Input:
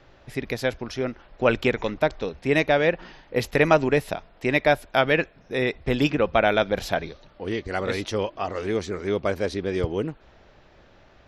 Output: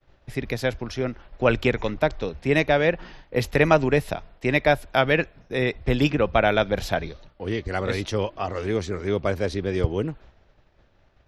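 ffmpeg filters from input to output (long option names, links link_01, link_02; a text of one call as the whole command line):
ffmpeg -i in.wav -filter_complex "[0:a]agate=range=-33dB:threshold=-45dB:ratio=3:detection=peak,acrossover=split=130[link_01][link_02];[link_01]acontrast=72[link_03];[link_03][link_02]amix=inputs=2:normalize=0" out.wav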